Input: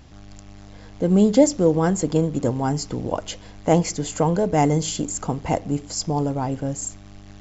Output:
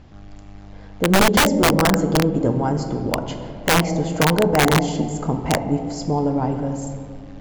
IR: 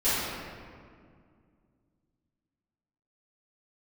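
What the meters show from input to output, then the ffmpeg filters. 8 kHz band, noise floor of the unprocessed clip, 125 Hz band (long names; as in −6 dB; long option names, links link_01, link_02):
can't be measured, −43 dBFS, +2.0 dB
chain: -filter_complex "[0:a]aemphasis=mode=reproduction:type=75fm,asplit=2[link_01][link_02];[1:a]atrim=start_sample=2205,adelay=5[link_03];[link_02][link_03]afir=irnorm=-1:irlink=0,volume=-19.5dB[link_04];[link_01][link_04]amix=inputs=2:normalize=0,aeval=exprs='(mod(2.99*val(0)+1,2)-1)/2.99':channel_layout=same,volume=1dB"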